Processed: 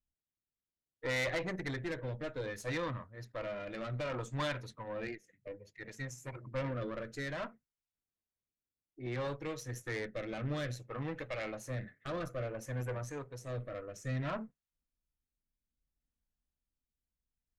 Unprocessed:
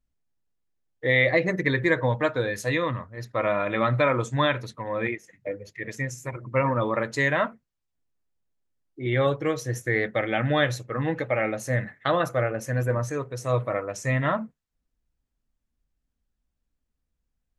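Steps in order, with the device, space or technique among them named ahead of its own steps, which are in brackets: overdriven rotary cabinet (valve stage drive 23 dB, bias 0.6; rotary cabinet horn 0.6 Hz); trim -6.5 dB

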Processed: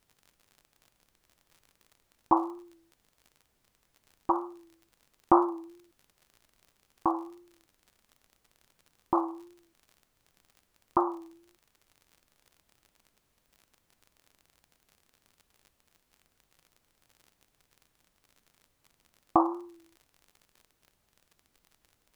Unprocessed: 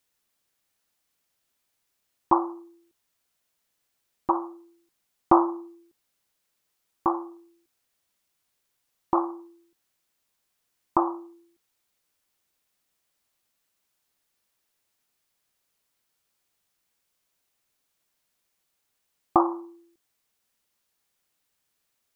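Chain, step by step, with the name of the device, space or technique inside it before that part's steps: vinyl LP (wow and flutter; crackle 45 per s -41 dBFS; pink noise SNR 38 dB); trim -3 dB

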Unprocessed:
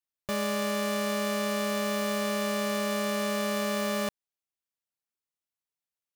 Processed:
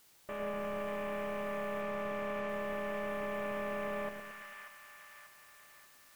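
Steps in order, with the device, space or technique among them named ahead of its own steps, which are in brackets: army field radio (band-pass 310–3300 Hz; CVSD coder 16 kbps; white noise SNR 22 dB); 1.81–2.49 s: low-pass 7.2 kHz; two-band feedback delay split 920 Hz, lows 110 ms, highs 588 ms, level -4 dB; trim -6.5 dB

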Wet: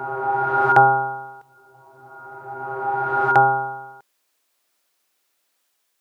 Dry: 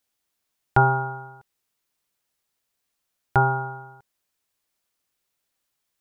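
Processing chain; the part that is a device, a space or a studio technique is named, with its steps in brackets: ghost voice (reverse; reverberation RT60 2.9 s, pre-delay 41 ms, DRR 1 dB; reverse; high-pass 310 Hz 12 dB/octave); trim +7 dB

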